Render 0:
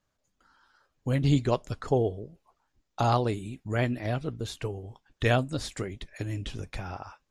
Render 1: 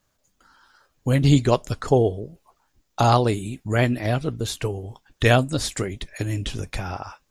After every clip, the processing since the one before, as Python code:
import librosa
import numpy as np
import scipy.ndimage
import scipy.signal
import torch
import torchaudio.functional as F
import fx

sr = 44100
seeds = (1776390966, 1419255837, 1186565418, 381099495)

y = fx.high_shelf(x, sr, hz=7100.0, db=9.0)
y = y * 10.0 ** (7.0 / 20.0)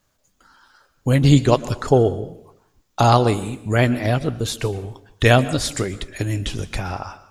y = fx.rev_plate(x, sr, seeds[0], rt60_s=0.73, hf_ratio=0.85, predelay_ms=105, drr_db=15.5)
y = y * 10.0 ** (3.0 / 20.0)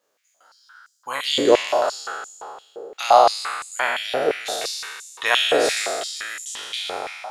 y = fx.spec_trails(x, sr, decay_s=1.91)
y = fx.filter_held_highpass(y, sr, hz=5.8, low_hz=450.0, high_hz=7100.0)
y = y * 10.0 ** (-6.5 / 20.0)